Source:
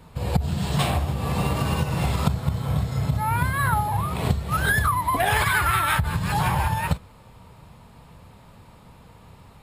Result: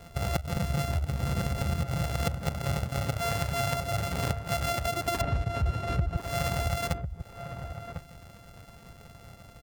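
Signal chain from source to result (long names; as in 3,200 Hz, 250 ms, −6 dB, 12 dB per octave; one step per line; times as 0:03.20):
samples sorted by size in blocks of 64 samples
0:05.21–0:06.17: RIAA equalisation playback
reverb reduction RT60 0.55 s
0:00.56–0:02.04: low-shelf EQ 170 Hz +9 dB
downward compressor 6 to 1, threshold −26 dBFS, peak gain reduction 18.5 dB
slap from a distant wall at 180 metres, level −8 dB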